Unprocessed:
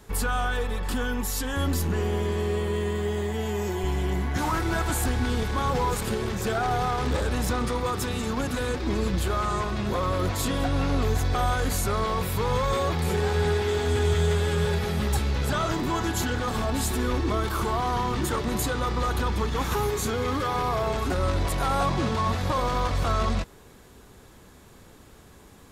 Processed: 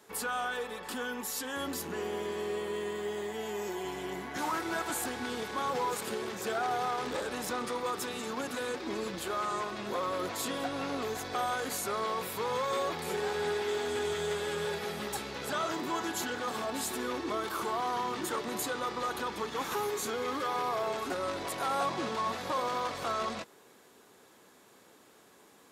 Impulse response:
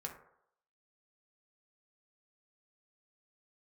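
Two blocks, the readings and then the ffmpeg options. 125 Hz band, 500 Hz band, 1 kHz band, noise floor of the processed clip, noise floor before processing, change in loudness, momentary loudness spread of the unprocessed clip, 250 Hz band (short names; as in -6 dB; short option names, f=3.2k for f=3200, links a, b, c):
-22.5 dB, -6.0 dB, -5.0 dB, -59 dBFS, -51 dBFS, -7.5 dB, 4 LU, -10.0 dB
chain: -af "highpass=300,volume=-5dB"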